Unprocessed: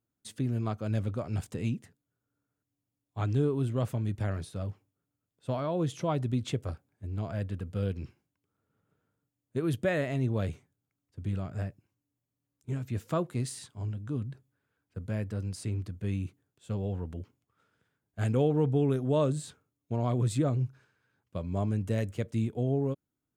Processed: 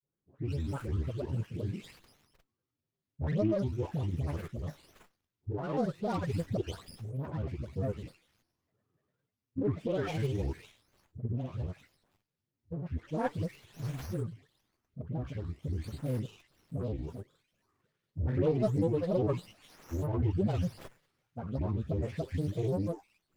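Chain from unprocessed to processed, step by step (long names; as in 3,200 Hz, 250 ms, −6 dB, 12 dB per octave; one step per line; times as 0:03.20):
every frequency bin delayed by itself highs late, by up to 532 ms
thirty-one-band graphic EQ 250 Hz −9 dB, 400 Hz +8 dB, 630 Hz −6 dB, 1,600 Hz −8 dB, 6,300 Hz +7 dB
granular cloud, spray 34 ms, pitch spread up and down by 7 semitones
windowed peak hold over 5 samples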